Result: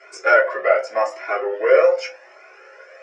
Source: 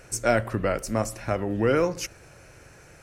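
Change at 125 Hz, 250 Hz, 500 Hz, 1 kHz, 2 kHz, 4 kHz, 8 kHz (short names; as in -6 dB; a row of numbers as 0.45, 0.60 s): under -35 dB, -11.5 dB, +9.0 dB, +8.5 dB, +11.0 dB, +1.5 dB, under -10 dB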